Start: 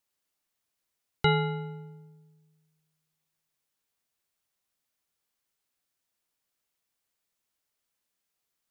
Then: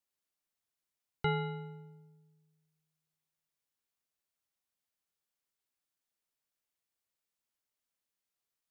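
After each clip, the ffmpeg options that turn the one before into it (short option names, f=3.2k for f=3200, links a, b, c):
-filter_complex "[0:a]acrossover=split=3000[a][b];[b]acompressor=threshold=-45dB:ratio=4:attack=1:release=60[c];[a][c]amix=inputs=2:normalize=0,volume=-7.5dB"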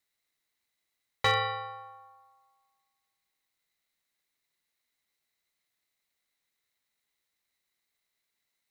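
-af "equalizer=f=3k:t=o:w=0.22:g=15,aeval=exprs='val(0)*sin(2*PI*950*n/s)':c=same,asoftclip=type=hard:threshold=-24.5dB,volume=8dB"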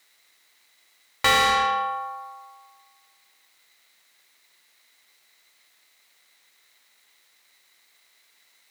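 -filter_complex "[0:a]asplit=2[a][b];[b]highpass=f=720:p=1,volume=26dB,asoftclip=type=tanh:threshold=-16dB[c];[a][c]amix=inputs=2:normalize=0,lowpass=f=7.6k:p=1,volume=-6dB,volume=3dB"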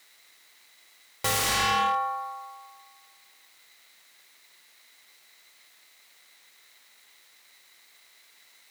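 -af "aeval=exprs='0.0668*(abs(mod(val(0)/0.0668+3,4)-2)-1)':c=same,volume=4dB"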